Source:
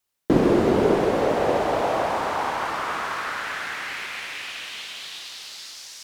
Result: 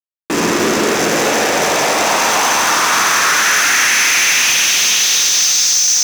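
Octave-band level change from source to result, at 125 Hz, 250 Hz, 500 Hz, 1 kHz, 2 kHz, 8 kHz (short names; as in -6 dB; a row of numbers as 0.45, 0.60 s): +0.5, +3.5, +4.0, +9.5, +17.0, +31.0 dB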